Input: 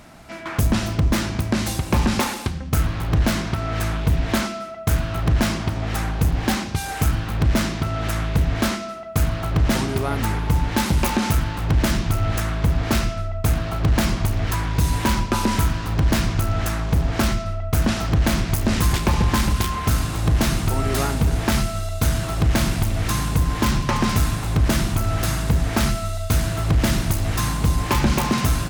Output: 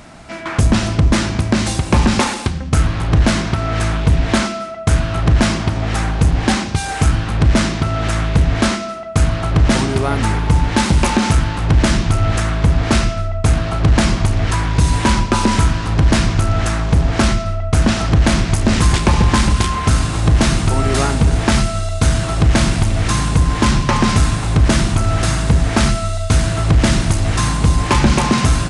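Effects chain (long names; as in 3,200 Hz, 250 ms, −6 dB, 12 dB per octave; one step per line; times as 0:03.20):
downsampling to 22,050 Hz
level +6 dB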